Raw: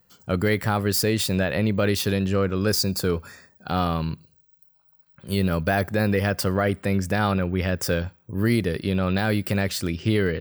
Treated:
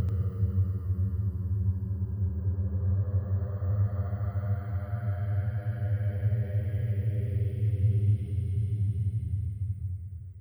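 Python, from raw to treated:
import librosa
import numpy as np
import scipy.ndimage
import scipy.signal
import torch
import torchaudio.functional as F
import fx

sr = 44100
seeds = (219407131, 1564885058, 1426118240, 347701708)

y = fx.curve_eq(x, sr, hz=(120.0, 220.0, 2500.0, 12000.0), db=(0, -23, -28, -18))
y = fx.paulstretch(y, sr, seeds[0], factor=35.0, window_s=0.1, from_s=6.48)
y = y + 10.0 ** (-9.0 / 20.0) * np.pad(y, (int(88 * sr / 1000.0), 0))[:len(y)]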